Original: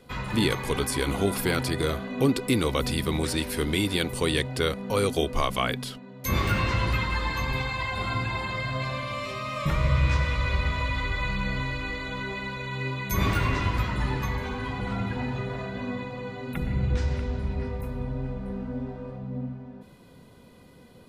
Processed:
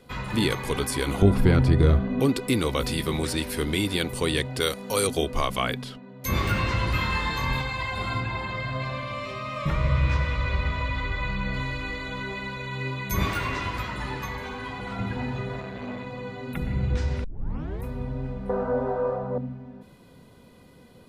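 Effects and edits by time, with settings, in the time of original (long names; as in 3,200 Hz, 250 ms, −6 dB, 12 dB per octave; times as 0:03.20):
0:01.22–0:02.20: RIAA equalisation playback
0:02.79–0:03.21: double-tracking delay 18 ms −8 dB
0:04.60–0:05.07: bass and treble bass −6 dB, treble +11 dB
0:05.82–0:06.22: low-pass filter 3,400 Hz 6 dB per octave
0:06.92–0:07.61: flutter between parallel walls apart 4.1 metres, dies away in 0.4 s
0:08.20–0:11.54: high-shelf EQ 6,200 Hz −11 dB
0:13.25–0:14.99: low-shelf EQ 250 Hz −8.5 dB
0:15.60–0:16.07: saturating transformer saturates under 540 Hz
0:17.24: tape start 0.60 s
0:18.49–0:19.38: flat-topped bell 800 Hz +16 dB 2.3 octaves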